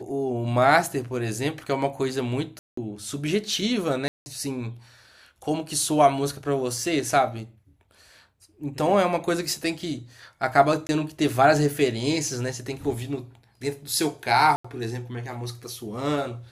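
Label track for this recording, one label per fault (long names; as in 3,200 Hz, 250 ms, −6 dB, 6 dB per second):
2.590000	2.770000	drop-out 184 ms
4.080000	4.260000	drop-out 180 ms
10.870000	10.890000	drop-out 20 ms
14.560000	14.640000	drop-out 85 ms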